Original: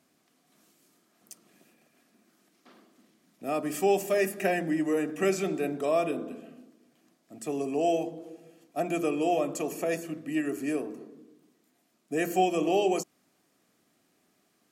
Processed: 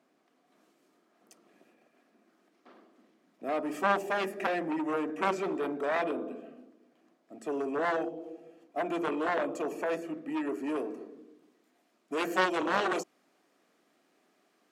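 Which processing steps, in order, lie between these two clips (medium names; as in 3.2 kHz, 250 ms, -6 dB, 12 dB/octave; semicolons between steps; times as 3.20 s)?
one-sided wavefolder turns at -23.5 dBFS; low-pass 1.2 kHz 6 dB/octave, from 10.76 s 2.6 kHz; Chebyshev shaper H 7 -9 dB, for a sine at -10 dBFS; high-pass 310 Hz 12 dB/octave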